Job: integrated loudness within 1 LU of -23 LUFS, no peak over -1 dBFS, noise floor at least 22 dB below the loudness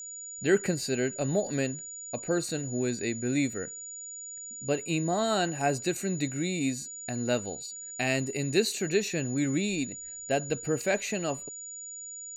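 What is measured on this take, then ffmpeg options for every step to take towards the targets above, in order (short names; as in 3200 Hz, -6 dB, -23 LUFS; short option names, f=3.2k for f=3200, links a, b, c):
steady tone 6900 Hz; tone level -39 dBFS; loudness -30.5 LUFS; peak -12.0 dBFS; loudness target -23.0 LUFS
-> -af "bandreject=f=6.9k:w=30"
-af "volume=7.5dB"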